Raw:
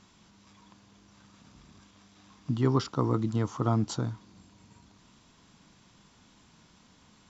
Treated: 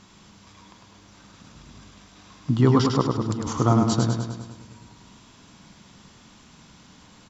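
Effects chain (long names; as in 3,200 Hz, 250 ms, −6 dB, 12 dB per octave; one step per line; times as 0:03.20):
0:03.01–0:03.53: compressor whose output falls as the input rises −36 dBFS, ratio −1
repeating echo 102 ms, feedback 59%, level −4.5 dB
level +7 dB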